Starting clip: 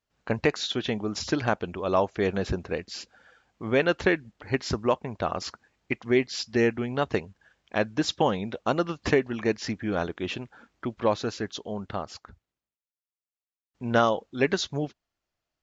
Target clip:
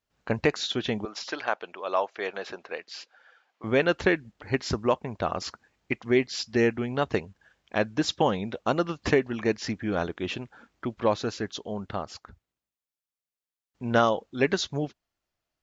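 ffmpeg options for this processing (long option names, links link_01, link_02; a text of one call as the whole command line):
ffmpeg -i in.wav -filter_complex "[0:a]asettb=1/sr,asplit=3[link_01][link_02][link_03];[link_01]atrim=end=1.054[link_04];[link_02]atrim=start=1.05:end=3.64,asetpts=PTS-STARTPTS,afade=type=in:duration=0.004:curve=qsin,afade=type=out:start_time=2.586:duration=0.004:curve=qsin,highpass=620,lowpass=4900[link_05];[link_03]atrim=start=3.636[link_06];[link_04][link_05]acrossfade=duration=0.004:curve1=hsin:curve2=qsin[link_07];[link_07][link_06]acrossfade=duration=0.004:curve1=qsin:curve2=hsin" out.wav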